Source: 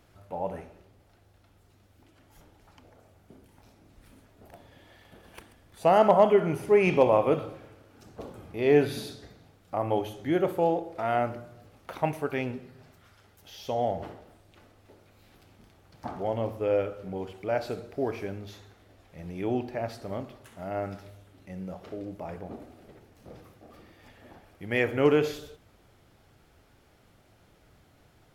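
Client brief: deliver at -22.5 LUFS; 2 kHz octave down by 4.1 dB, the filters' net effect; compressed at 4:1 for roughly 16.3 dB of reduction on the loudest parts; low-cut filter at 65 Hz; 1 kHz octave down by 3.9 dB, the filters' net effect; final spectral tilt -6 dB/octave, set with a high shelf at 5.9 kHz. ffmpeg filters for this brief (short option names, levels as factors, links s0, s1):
-af "highpass=65,equalizer=f=1000:t=o:g=-5,equalizer=f=2000:t=o:g=-3,highshelf=f=5900:g=-6,acompressor=threshold=0.0141:ratio=4,volume=9.44"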